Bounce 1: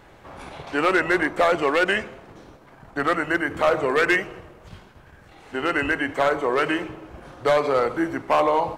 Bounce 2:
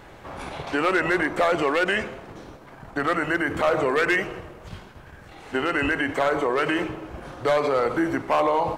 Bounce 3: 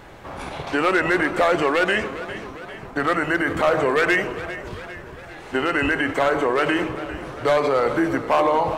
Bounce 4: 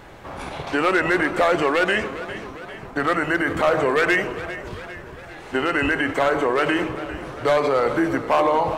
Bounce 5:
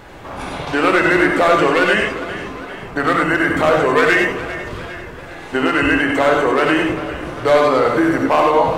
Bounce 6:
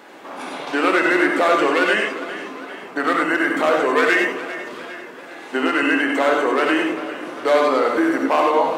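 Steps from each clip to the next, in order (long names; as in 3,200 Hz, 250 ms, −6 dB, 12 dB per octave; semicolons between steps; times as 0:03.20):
brickwall limiter −18 dBFS, peak gain reduction 6.5 dB; level +4 dB
feedback echo with a swinging delay time 402 ms, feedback 58%, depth 74 cents, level −14 dB; level +2.5 dB
floating-point word with a short mantissa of 8 bits
reverb whose tail is shaped and stops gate 120 ms rising, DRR 2 dB; level +3.5 dB
Chebyshev high-pass filter 250 Hz, order 3; level −2.5 dB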